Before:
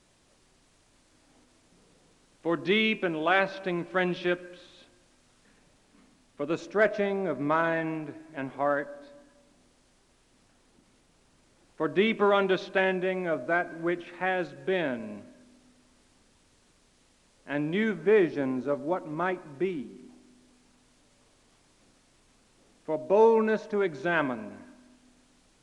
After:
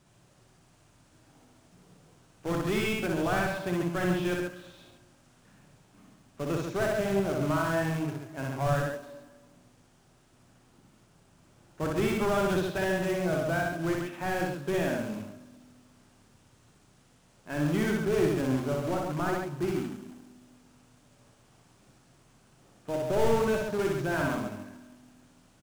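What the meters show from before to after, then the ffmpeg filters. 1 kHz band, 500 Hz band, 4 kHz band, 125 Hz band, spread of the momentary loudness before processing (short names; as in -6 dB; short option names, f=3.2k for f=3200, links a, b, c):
-2.5 dB, -2.5 dB, -3.0 dB, +7.5 dB, 14 LU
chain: -filter_complex "[0:a]acrusher=bits=2:mode=log:mix=0:aa=0.000001,asplit=2[a][b];[b]highpass=f=720:p=1,volume=20dB,asoftclip=type=tanh:threshold=-10.5dB[c];[a][c]amix=inputs=2:normalize=0,lowpass=f=1.1k:p=1,volume=-6dB,equalizer=f=125:t=o:w=1:g=11,equalizer=f=250:t=o:w=1:g=-7,equalizer=f=500:t=o:w=1:g=-9,equalizer=f=1k:t=o:w=1:g=-7,equalizer=f=2k:t=o:w=1:g=-9,equalizer=f=4k:t=o:w=1:g=-7,asplit=2[d][e];[e]aecho=0:1:61.22|137:0.794|0.562[f];[d][f]amix=inputs=2:normalize=0"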